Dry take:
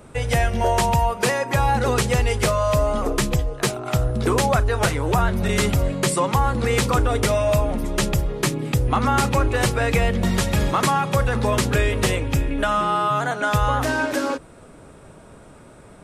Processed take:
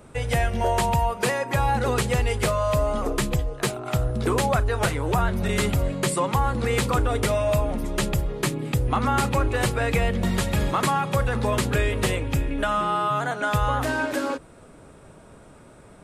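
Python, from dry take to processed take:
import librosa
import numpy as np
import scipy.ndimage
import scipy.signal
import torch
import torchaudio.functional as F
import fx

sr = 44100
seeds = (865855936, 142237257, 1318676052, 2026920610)

y = fx.dynamic_eq(x, sr, hz=5700.0, q=3.2, threshold_db=-46.0, ratio=4.0, max_db=-5)
y = F.gain(torch.from_numpy(y), -3.0).numpy()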